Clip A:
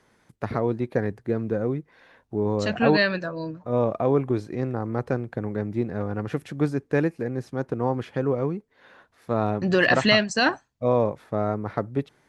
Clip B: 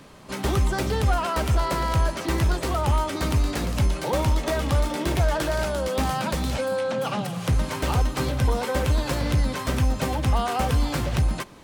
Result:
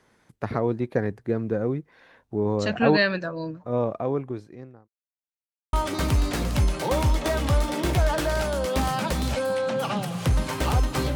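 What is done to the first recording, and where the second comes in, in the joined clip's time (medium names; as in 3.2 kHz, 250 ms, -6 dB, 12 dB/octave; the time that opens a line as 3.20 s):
clip A
3.51–4.88 s: fade out linear
4.88–5.73 s: mute
5.73 s: go over to clip B from 2.95 s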